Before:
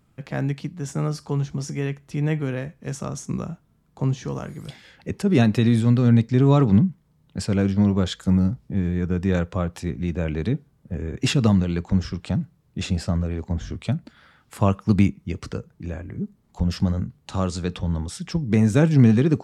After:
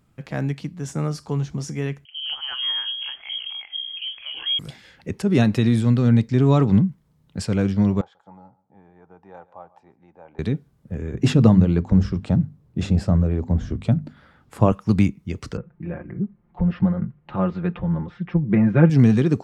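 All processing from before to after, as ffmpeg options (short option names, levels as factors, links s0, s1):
-filter_complex "[0:a]asettb=1/sr,asplit=3[s0][s1][s2];[s0]atrim=end=2.054[s3];[s1]atrim=start=2.05:end=4.59,asetpts=PTS-STARTPTS,afade=t=in:d=0.004:c=qsin,afade=t=out:st=2.536:d=0.004:c=qsin,acompressor=mode=upward:threshold=0.0447:ratio=2.5:attack=3.2:release=140:knee=2.83:detection=peak,acrossover=split=220|910[s4][s5][s6];[s6]adelay=210[s7];[s4]adelay=440[s8];[s8][s5][s7]amix=inputs=3:normalize=0,atrim=end_sample=112014,lowpass=f=2900:t=q:w=0.5098,lowpass=f=2900:t=q:w=0.6013,lowpass=f=2900:t=q:w=0.9,lowpass=f=2900:t=q:w=2.563,afreqshift=-3400[s9];[s2]atrim=start=4.586[s10];[s3][s9]acrossfade=d=0.004:c1=hsin:c2=qsin[s11];[s11][s10]acrossfade=d=0.004:c1=qsin:c2=hsin,asettb=1/sr,asplit=3[s12][s13][s14];[s12]atrim=end=8.014[s15];[s13]atrim=start=8.01:end=10.39,asetpts=PTS-STARTPTS,afade=t=in:d=0.004:c=qsin,afade=t=out:st=2.376:d=0.004:c=qsin,bandpass=f=830:t=q:w=7.2,aecho=1:1:138|276:0.1|0.024,atrim=end_sample=104958[s16];[s14]atrim=start=10.386[s17];[s15][s16]acrossfade=d=0.004:c1=hsin:c2=qsin[s18];[s18][s17]acrossfade=d=0.004:c1=qsin:c2=hsin,asettb=1/sr,asplit=3[s19][s20][s21];[s19]atrim=end=11.144[s22];[s20]atrim=start=11.14:end=14.72,asetpts=PTS-STARTPTS,afade=t=in:d=0.004:c=qsin,afade=t=out:st=3.576:d=0.004:c=qsin,tiltshelf=f=1300:g=6,bandreject=f=50:t=h:w=6,bandreject=f=100:t=h:w=6,bandreject=f=150:t=h:w=6,bandreject=f=200:t=h:w=6,bandreject=f=250:t=h:w=6[s23];[s21]atrim=start=14.716[s24];[s22][s23]acrossfade=d=0.004:c1=hsin:c2=qsin[s25];[s25][s24]acrossfade=d=0.004:c1=qsin:c2=hsin,asettb=1/sr,asplit=3[s26][s27][s28];[s26]atrim=end=15.574[s29];[s27]atrim=start=15.57:end=18.9,asetpts=PTS-STARTPTS,afade=t=in:d=0.004:c=qsin,afade=t=out:st=3.326:d=0.004:c=qsin,lowpass=f=2300:w=0.5412,lowpass=f=2300:w=1.3066,aecho=1:1:5.7:0.75,atrim=end_sample=146853[s30];[s28]atrim=start=18.896[s31];[s29][s30]acrossfade=d=0.004:c1=hsin:c2=qsin[s32];[s32][s31]acrossfade=d=0.004:c1=qsin:c2=hsin"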